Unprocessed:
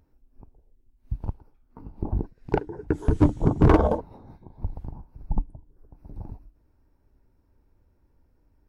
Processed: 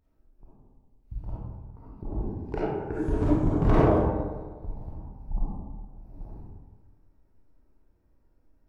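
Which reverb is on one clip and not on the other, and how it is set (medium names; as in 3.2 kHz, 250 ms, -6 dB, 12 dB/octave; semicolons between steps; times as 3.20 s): algorithmic reverb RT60 1.4 s, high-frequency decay 0.45×, pre-delay 10 ms, DRR -8.5 dB; trim -11 dB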